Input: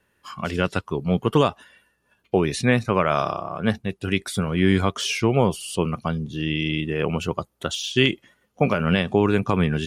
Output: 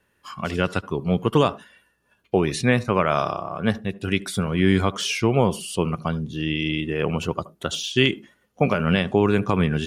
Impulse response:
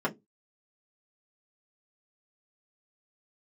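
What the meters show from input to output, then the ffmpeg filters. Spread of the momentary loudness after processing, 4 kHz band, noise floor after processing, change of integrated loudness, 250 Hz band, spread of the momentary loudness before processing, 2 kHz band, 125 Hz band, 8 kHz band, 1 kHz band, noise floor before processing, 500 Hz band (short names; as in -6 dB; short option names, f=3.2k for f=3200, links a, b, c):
8 LU, 0.0 dB, -67 dBFS, 0.0 dB, 0.0 dB, 8 LU, 0.0 dB, 0.0 dB, 0.0 dB, 0.0 dB, -69 dBFS, 0.0 dB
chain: -filter_complex "[0:a]asplit=2[a][b];[1:a]atrim=start_sample=2205,adelay=71[c];[b][c]afir=irnorm=-1:irlink=0,volume=-30dB[d];[a][d]amix=inputs=2:normalize=0"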